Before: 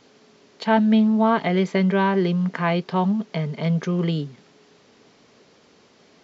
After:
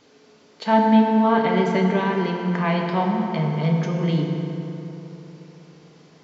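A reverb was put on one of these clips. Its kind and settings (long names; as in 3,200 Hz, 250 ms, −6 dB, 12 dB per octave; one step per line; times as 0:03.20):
feedback delay network reverb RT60 3.6 s, high-frequency decay 0.55×, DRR 0 dB
level −2 dB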